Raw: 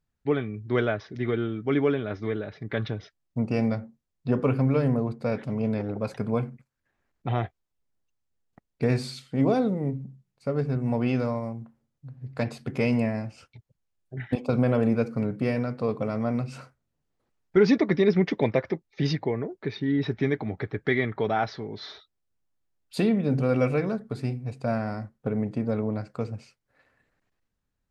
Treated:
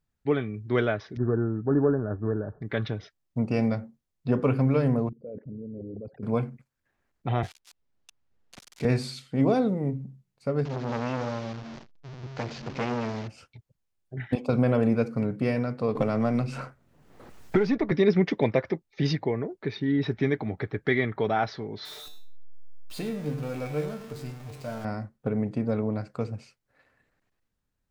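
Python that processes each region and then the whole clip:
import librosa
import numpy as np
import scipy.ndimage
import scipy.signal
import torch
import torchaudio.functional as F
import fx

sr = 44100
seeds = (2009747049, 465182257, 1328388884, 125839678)

y = fx.chain(x, sr, fx.median_filter(points=25),
    fx.brickwall_lowpass(high_hz=1800.0),
    fx.low_shelf(hz=110.0, db=9.5), at=(1.17, 2.62))
y = fx.chain(y, sr, fx.envelope_sharpen(power=3.0),
    fx.level_steps(step_db=19), at=(5.09, 6.23))
y = fx.chain(y, sr, fx.crossing_spikes(level_db=-27.0),
    fx.lowpass(hz=5000.0, slope=12),
    fx.band_squash(depth_pct=40), at=(7.43, 8.85))
y = fx.chain(y, sr, fx.delta_mod(bps=32000, step_db=-33.5),
    fx.transformer_sat(knee_hz=1000.0), at=(10.65, 13.28))
y = fx.chain(y, sr, fx.halfwave_gain(db=-3.0),
    fx.band_squash(depth_pct=100), at=(15.95, 17.92))
y = fx.chain(y, sr, fx.zero_step(step_db=-29.0),
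    fx.comb_fb(f0_hz=150.0, decay_s=0.43, harmonics='all', damping=0.0, mix_pct=80),
    fx.echo_single(ms=100, db=-19.0), at=(21.85, 24.85))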